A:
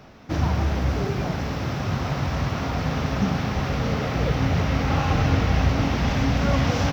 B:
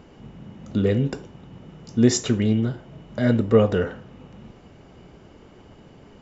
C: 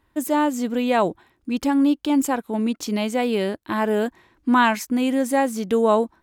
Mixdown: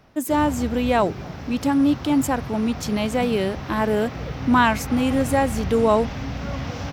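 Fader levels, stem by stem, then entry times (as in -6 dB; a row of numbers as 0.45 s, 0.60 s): -8.0 dB, mute, 0.0 dB; 0.00 s, mute, 0.00 s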